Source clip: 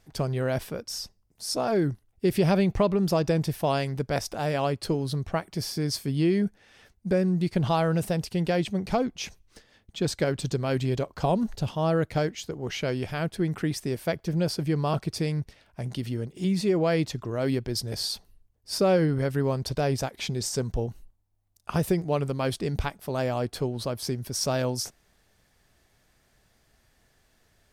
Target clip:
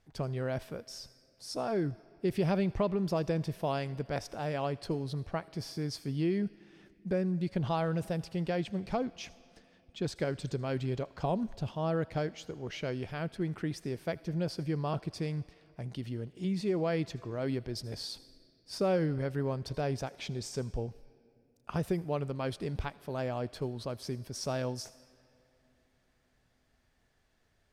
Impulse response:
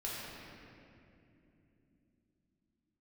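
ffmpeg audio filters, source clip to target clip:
-filter_complex "[0:a]highshelf=frequency=7500:gain=-11.5,asplit=2[link_01][link_02];[link_02]highpass=frequency=630:poles=1[link_03];[1:a]atrim=start_sample=2205,highshelf=frequency=5600:gain=12,adelay=79[link_04];[link_03][link_04]afir=irnorm=-1:irlink=0,volume=-22dB[link_05];[link_01][link_05]amix=inputs=2:normalize=0,volume=-7dB"

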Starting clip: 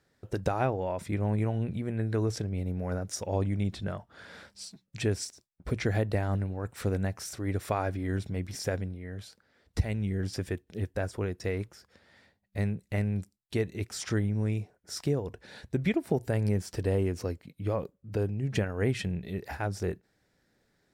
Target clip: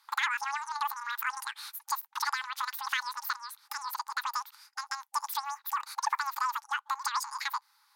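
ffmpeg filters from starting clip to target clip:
ffmpeg -i in.wav -filter_complex "[0:a]afftfilt=real='re*between(b*sr/4096,310,6300)':imag='im*between(b*sr/4096,310,6300)':win_size=4096:overlap=0.75,asplit=2[link_01][link_02];[link_02]acompressor=threshold=-44dB:ratio=6,volume=3dB[link_03];[link_01][link_03]amix=inputs=2:normalize=0,asetrate=115983,aresample=44100,acontrast=46,volume=-6.5dB" out.wav

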